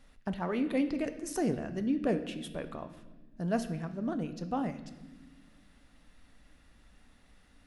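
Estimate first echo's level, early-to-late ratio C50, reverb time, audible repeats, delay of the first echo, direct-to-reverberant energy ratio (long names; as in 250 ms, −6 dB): no echo audible, 12.0 dB, 1.3 s, no echo audible, no echo audible, 8.5 dB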